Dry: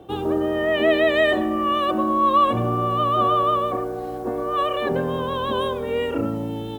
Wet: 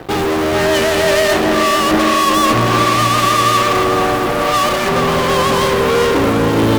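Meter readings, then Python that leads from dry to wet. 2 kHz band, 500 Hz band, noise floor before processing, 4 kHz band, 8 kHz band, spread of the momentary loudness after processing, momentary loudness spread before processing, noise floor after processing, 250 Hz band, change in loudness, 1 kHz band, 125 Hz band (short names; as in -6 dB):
+10.5 dB, +7.5 dB, -30 dBFS, +13.0 dB, n/a, 3 LU, 8 LU, -16 dBFS, +8.0 dB, +8.0 dB, +7.5 dB, +10.0 dB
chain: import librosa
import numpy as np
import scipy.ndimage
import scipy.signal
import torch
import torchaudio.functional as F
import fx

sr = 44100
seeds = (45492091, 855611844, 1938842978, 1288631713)

y = fx.fuzz(x, sr, gain_db=40.0, gate_db=-45.0)
y = fx.echo_filtered(y, sr, ms=434, feedback_pct=63, hz=3400.0, wet_db=-5.0)
y = fx.upward_expand(y, sr, threshold_db=-24.0, expansion=1.5)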